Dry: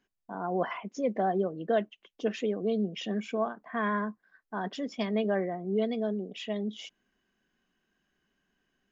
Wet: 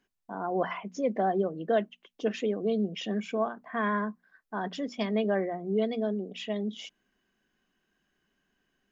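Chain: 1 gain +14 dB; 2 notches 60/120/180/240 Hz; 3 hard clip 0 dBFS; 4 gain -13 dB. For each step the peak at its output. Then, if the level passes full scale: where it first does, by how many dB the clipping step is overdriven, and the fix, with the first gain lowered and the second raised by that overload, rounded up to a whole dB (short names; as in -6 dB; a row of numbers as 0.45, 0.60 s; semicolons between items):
-2.5, -2.0, -2.0, -15.0 dBFS; no overload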